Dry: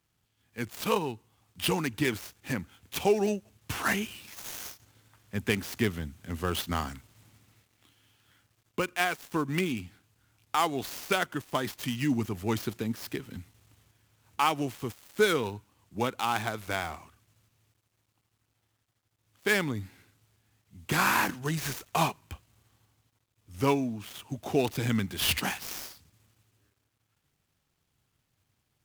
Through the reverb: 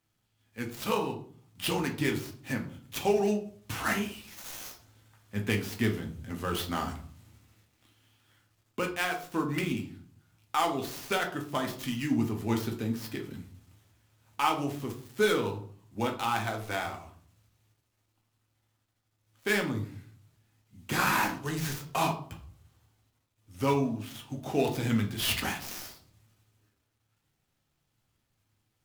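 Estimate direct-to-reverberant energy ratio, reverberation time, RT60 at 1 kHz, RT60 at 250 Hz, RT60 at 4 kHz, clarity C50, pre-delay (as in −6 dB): 1.5 dB, 0.50 s, 0.45 s, 0.70 s, 0.35 s, 10.5 dB, 3 ms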